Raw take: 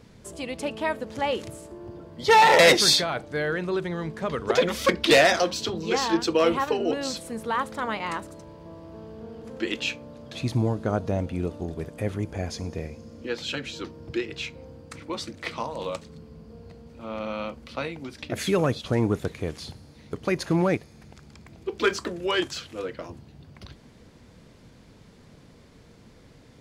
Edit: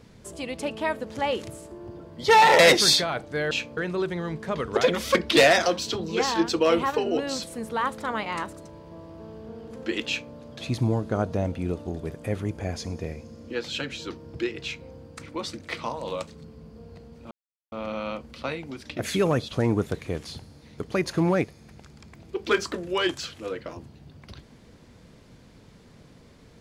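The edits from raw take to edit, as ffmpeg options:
-filter_complex "[0:a]asplit=4[s0][s1][s2][s3];[s0]atrim=end=3.512[s4];[s1]atrim=start=9.808:end=10.072[s5];[s2]atrim=start=3.508:end=17.05,asetpts=PTS-STARTPTS,afade=t=out:st=13.538:d=0.004:c=hsin,apad=pad_dur=0.41[s6];[s3]atrim=start=17.05,asetpts=PTS-STARTPTS,afade=t=in:d=0.004:c=hsin[s7];[s4][s5]acrossfade=d=0.004:c1=hsin:c2=hsin[s8];[s6][s7]concat=n=2:v=0:a=1[s9];[s8][s9]acrossfade=d=0.004:c1=hsin:c2=hsin"

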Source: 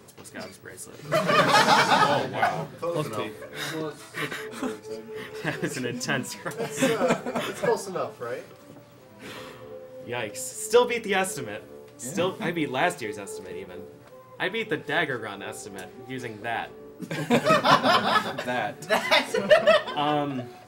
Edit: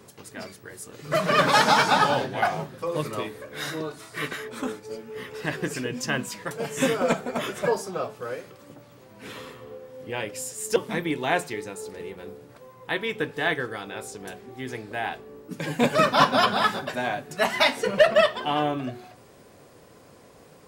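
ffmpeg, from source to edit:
-filter_complex "[0:a]asplit=2[s0][s1];[s0]atrim=end=10.762[s2];[s1]atrim=start=12.268[s3];[s2][s3]acrossfade=d=0.004:c1=hsin:c2=hsin"

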